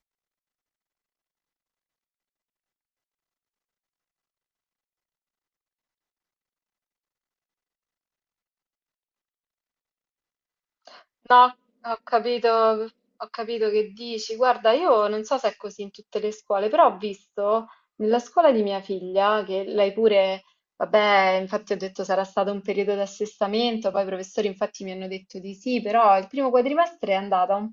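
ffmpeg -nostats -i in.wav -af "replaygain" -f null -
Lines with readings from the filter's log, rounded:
track_gain = +3.5 dB
track_peak = 0.441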